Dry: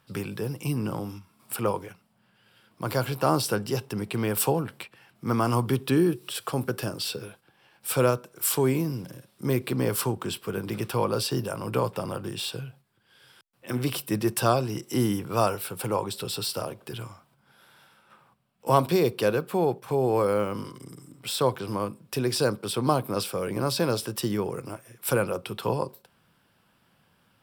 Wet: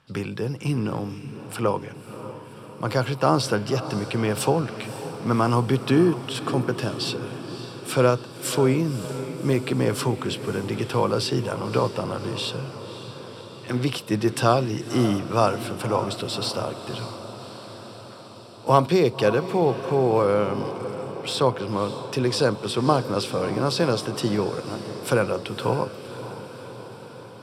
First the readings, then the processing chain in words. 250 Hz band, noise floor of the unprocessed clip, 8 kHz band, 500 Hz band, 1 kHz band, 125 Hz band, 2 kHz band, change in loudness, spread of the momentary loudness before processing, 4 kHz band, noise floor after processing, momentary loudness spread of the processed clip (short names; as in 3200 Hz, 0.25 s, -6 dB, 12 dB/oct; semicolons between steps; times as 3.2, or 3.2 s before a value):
+4.0 dB, -66 dBFS, -2.0 dB, +4.0 dB, +4.0 dB, +4.0 dB, +4.0 dB, +3.5 dB, 13 LU, +3.5 dB, -41 dBFS, 17 LU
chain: LPF 6800 Hz 12 dB/oct; diffused feedback echo 0.566 s, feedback 68%, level -12.5 dB; gain +3.5 dB